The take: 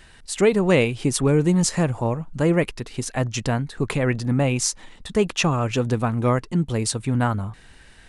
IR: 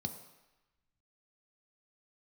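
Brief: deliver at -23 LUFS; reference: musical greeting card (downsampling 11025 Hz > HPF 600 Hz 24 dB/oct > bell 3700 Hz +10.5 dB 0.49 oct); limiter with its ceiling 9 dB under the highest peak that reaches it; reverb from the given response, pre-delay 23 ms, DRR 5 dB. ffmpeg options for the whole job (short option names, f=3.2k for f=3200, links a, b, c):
-filter_complex "[0:a]alimiter=limit=-13dB:level=0:latency=1,asplit=2[a][b];[1:a]atrim=start_sample=2205,adelay=23[c];[b][c]afir=irnorm=-1:irlink=0,volume=-4.5dB[d];[a][d]amix=inputs=2:normalize=0,aresample=11025,aresample=44100,highpass=f=600:w=0.5412,highpass=f=600:w=1.3066,equalizer=f=3.7k:t=o:w=0.49:g=10.5,volume=5dB"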